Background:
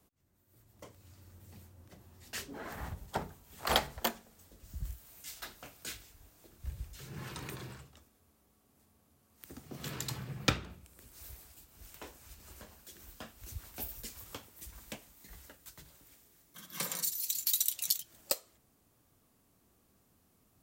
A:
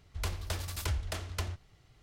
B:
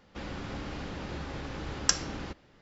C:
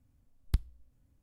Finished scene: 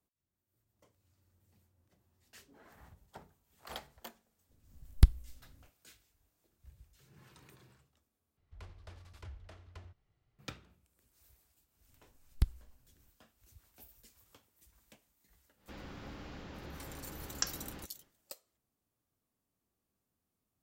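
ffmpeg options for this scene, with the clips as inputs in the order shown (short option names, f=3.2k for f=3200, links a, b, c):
-filter_complex "[3:a]asplit=2[a][b];[0:a]volume=-16.5dB[c];[a]dynaudnorm=f=140:g=3:m=11.5dB[d];[1:a]aemphasis=mode=reproduction:type=75fm[e];[c]asplit=2[f][g];[f]atrim=end=8.374[h];[e]atrim=end=2.02,asetpts=PTS-STARTPTS,volume=-16.5dB[i];[g]atrim=start=10.386[j];[d]atrim=end=1.22,asetpts=PTS-STARTPTS,volume=-3.5dB,afade=t=in:d=0.004:c=hsin,afade=t=out:st=1.216:d=0.004:c=hsin,adelay=198009S[k];[b]atrim=end=1.22,asetpts=PTS-STARTPTS,volume=-1dB,afade=t=in:d=0.004:c=hsin,afade=t=out:st=1.216:d=0.004:c=hsin,adelay=11880[l];[2:a]atrim=end=2.61,asetpts=PTS-STARTPTS,volume=-9.5dB,afade=t=in:d=0.1,afade=t=out:st=2.51:d=0.1,adelay=15530[m];[h][i]acrossfade=d=0.004:c1=hsin:c2=hsin[n];[n][j]acrossfade=d=0.004:c1=hsin:c2=hsin[o];[o][k][l][m]amix=inputs=4:normalize=0"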